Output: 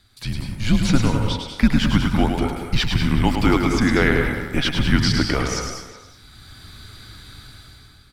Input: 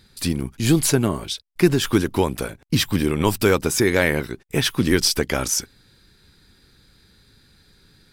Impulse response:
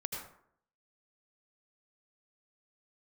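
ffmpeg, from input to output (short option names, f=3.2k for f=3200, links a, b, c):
-filter_complex "[0:a]afreqshift=-130,dynaudnorm=f=190:g=7:m=15.5dB,asplit=2[a][b];[b]adelay=370,highpass=300,lowpass=3.4k,asoftclip=type=hard:threshold=-9.5dB,volume=-15dB[c];[a][c]amix=inputs=2:normalize=0,asplit=2[d][e];[1:a]atrim=start_sample=2205,adelay=106[f];[e][f]afir=irnorm=-1:irlink=0,volume=-3.5dB[g];[d][g]amix=inputs=2:normalize=0,acrossover=split=5200[h][i];[i]acompressor=threshold=-45dB:ratio=4:attack=1:release=60[j];[h][j]amix=inputs=2:normalize=0,volume=-3dB"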